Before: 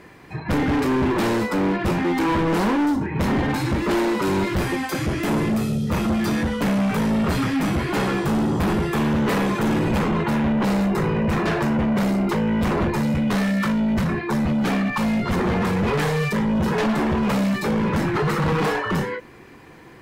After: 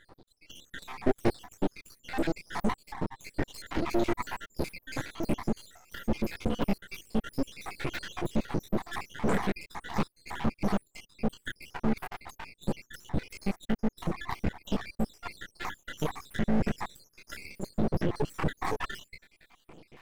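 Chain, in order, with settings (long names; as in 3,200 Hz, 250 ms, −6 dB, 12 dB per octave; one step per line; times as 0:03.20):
time-frequency cells dropped at random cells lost 83%
0:00.79–0:01.51: graphic EQ with 15 bands 400 Hz +8 dB, 1,000 Hz −10 dB, 6,300 Hz −8 dB
half-wave rectification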